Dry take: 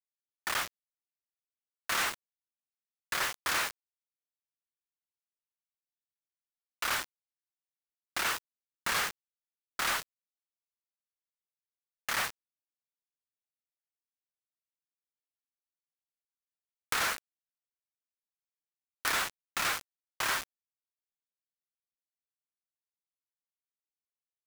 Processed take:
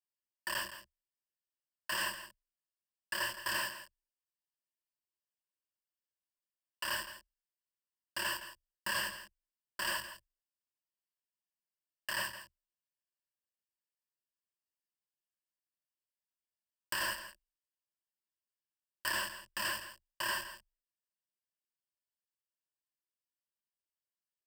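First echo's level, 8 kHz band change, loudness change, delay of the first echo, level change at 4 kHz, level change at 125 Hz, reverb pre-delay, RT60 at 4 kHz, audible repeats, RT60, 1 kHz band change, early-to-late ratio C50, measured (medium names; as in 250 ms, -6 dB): -12.5 dB, -6.0 dB, -5.0 dB, 165 ms, -3.5 dB, -4.0 dB, no reverb, no reverb, 1, no reverb, -6.0 dB, no reverb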